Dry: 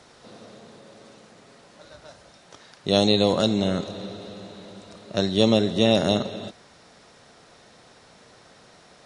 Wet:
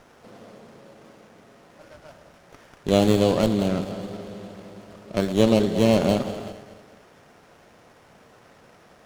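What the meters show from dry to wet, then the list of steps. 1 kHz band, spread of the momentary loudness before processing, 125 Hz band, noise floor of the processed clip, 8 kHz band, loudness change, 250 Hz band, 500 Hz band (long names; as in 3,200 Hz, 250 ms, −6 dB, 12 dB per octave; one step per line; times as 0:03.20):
+0.5 dB, 20 LU, +2.0 dB, −54 dBFS, +1.0 dB, 0.0 dB, +1.5 dB, +1.0 dB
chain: feedback delay that plays each chunk backwards 107 ms, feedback 64%, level −12 dB
windowed peak hold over 9 samples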